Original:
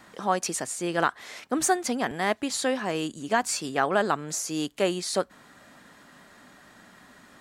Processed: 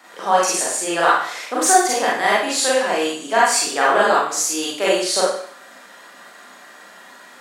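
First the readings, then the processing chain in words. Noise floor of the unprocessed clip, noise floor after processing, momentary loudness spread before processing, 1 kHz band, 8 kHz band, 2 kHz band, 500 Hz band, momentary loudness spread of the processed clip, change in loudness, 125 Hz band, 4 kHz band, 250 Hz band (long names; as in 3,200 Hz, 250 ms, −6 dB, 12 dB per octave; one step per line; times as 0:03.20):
−54 dBFS, −44 dBFS, 6 LU, +11.0 dB, +11.0 dB, +10.5 dB, +9.0 dB, 6 LU, +9.5 dB, can't be measured, +11.0 dB, +2.5 dB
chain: high-pass filter 440 Hz 12 dB per octave
four-comb reverb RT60 0.57 s, combs from 32 ms, DRR −6.5 dB
level +3.5 dB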